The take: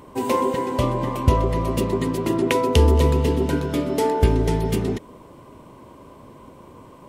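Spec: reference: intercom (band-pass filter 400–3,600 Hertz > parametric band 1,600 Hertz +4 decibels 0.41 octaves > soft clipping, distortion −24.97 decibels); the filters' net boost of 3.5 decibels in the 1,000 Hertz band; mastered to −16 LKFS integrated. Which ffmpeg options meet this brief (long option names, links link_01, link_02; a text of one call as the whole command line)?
ffmpeg -i in.wav -af "highpass=400,lowpass=3600,equalizer=frequency=1000:width_type=o:gain=3.5,equalizer=frequency=1600:width_type=o:width=0.41:gain=4,asoftclip=threshold=-10dB,volume=8.5dB" out.wav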